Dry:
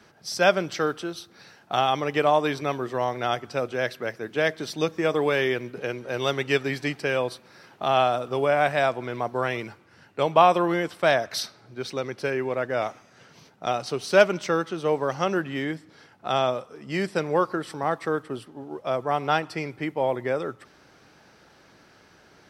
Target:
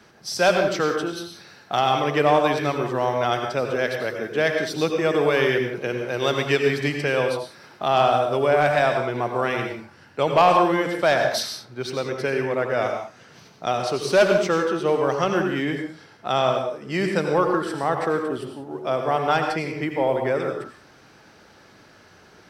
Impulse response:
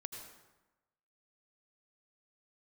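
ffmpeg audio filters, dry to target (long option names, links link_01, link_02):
-filter_complex "[0:a]volume=10dB,asoftclip=hard,volume=-10dB,acontrast=77[link_01];[1:a]atrim=start_sample=2205,afade=type=out:start_time=0.25:duration=0.01,atrim=end_sample=11466[link_02];[link_01][link_02]afir=irnorm=-1:irlink=0"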